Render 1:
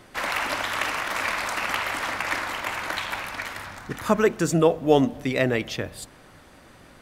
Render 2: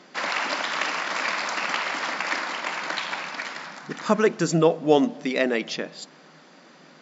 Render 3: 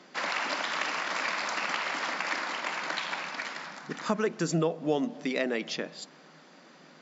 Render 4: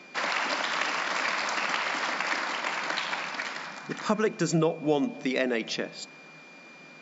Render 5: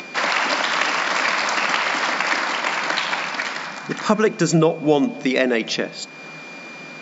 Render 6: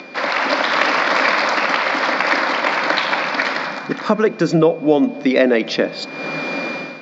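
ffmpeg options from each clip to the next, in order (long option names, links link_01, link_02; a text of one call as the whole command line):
ffmpeg -i in.wav -af "afftfilt=real='re*between(b*sr/4096,150,7600)':imag='im*between(b*sr/4096,150,7600)':win_size=4096:overlap=0.75,equalizer=frequency=4800:width=3.1:gain=5" out.wav
ffmpeg -i in.wav -filter_complex "[0:a]acrossover=split=140[link_01][link_02];[link_02]acompressor=threshold=-23dB:ratio=2.5[link_03];[link_01][link_03]amix=inputs=2:normalize=0,volume=-3.5dB" out.wav
ffmpeg -i in.wav -af "aeval=exprs='val(0)+0.00251*sin(2*PI*2400*n/s)':channel_layout=same,volume=2.5dB" out.wav
ffmpeg -i in.wav -af "acompressor=mode=upward:threshold=-38dB:ratio=2.5,volume=8.5dB" out.wav
ffmpeg -i in.wav -af "highpass=140,equalizer=frequency=280:width_type=q:width=4:gain=5,equalizer=frequency=540:width_type=q:width=4:gain=6,equalizer=frequency=2900:width_type=q:width=4:gain=-5,lowpass=frequency=4900:width=0.5412,lowpass=frequency=4900:width=1.3066,dynaudnorm=framelen=130:gausssize=5:maxgain=14dB,volume=-1dB" out.wav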